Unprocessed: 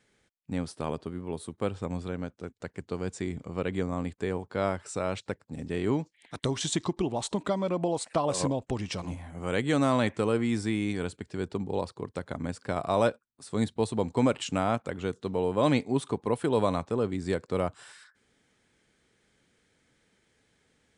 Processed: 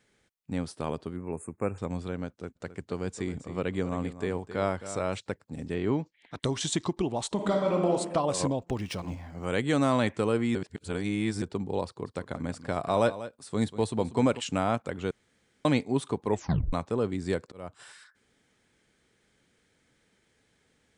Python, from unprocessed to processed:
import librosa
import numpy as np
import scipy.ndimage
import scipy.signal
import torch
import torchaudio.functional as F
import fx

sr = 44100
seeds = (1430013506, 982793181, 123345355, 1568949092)

y = fx.brickwall_bandstop(x, sr, low_hz=2700.0, high_hz=6300.0, at=(1.16, 1.78))
y = fx.echo_single(y, sr, ms=266, db=-12.5, at=(2.55, 5.17), fade=0.02)
y = fx.air_absorb(y, sr, metres=110.0, at=(5.74, 6.4))
y = fx.reverb_throw(y, sr, start_s=7.34, length_s=0.57, rt60_s=1.2, drr_db=0.0)
y = fx.resample_linear(y, sr, factor=3, at=(8.61, 9.45))
y = fx.echo_single(y, sr, ms=191, db=-14.0, at=(12.04, 14.39), fade=0.02)
y = fx.auto_swell(y, sr, attack_ms=439.0, at=(17.29, 17.8))
y = fx.edit(y, sr, fx.reverse_span(start_s=10.55, length_s=0.87),
    fx.room_tone_fill(start_s=15.11, length_s=0.54),
    fx.tape_stop(start_s=16.28, length_s=0.45), tone=tone)